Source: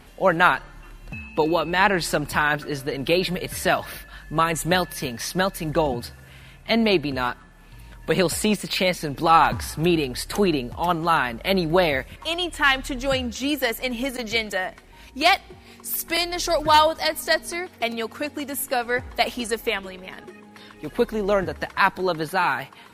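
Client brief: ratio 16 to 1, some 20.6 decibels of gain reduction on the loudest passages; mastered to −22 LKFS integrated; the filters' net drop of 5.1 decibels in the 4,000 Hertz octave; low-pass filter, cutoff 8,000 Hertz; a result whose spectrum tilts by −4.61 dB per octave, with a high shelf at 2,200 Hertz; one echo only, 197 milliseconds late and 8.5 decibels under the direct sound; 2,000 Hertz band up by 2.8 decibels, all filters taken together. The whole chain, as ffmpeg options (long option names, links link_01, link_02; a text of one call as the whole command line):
ffmpeg -i in.wav -af "lowpass=8000,equalizer=frequency=2000:width_type=o:gain=7.5,highshelf=frequency=2200:gain=-5.5,equalizer=frequency=4000:width_type=o:gain=-5,acompressor=threshold=-31dB:ratio=16,aecho=1:1:197:0.376,volume=14dB" out.wav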